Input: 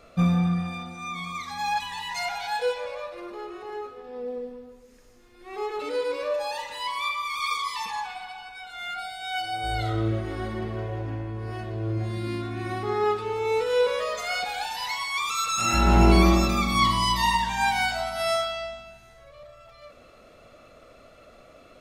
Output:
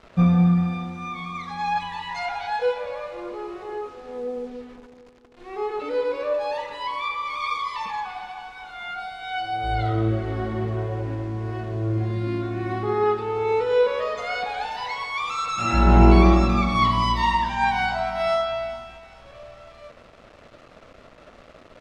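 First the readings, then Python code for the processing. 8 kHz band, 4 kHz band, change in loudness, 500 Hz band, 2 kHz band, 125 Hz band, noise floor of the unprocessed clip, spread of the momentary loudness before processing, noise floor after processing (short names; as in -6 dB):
-11.0 dB, -3.5 dB, +2.5 dB, +3.5 dB, 0.0 dB, +4.5 dB, -53 dBFS, 15 LU, -50 dBFS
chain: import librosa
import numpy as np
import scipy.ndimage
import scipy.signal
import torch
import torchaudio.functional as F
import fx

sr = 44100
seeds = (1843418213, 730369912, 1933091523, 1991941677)

p1 = fx.quant_dither(x, sr, seeds[0], bits=8, dither='none')
p2 = fx.spacing_loss(p1, sr, db_at_10k=23)
p3 = p2 + fx.echo_alternate(p2, sr, ms=211, hz=1100.0, feedback_pct=65, wet_db=-12.0, dry=0)
y = F.gain(torch.from_numpy(p3), 4.5).numpy()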